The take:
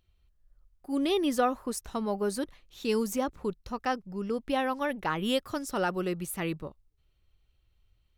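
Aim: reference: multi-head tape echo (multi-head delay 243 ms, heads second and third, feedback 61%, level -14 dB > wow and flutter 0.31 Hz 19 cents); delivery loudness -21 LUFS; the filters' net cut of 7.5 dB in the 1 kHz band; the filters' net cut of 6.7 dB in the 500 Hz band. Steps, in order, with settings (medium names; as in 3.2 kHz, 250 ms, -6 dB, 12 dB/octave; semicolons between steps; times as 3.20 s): peaking EQ 500 Hz -6.5 dB; peaking EQ 1 kHz -8 dB; multi-head delay 243 ms, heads second and third, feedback 61%, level -14 dB; wow and flutter 0.31 Hz 19 cents; trim +13.5 dB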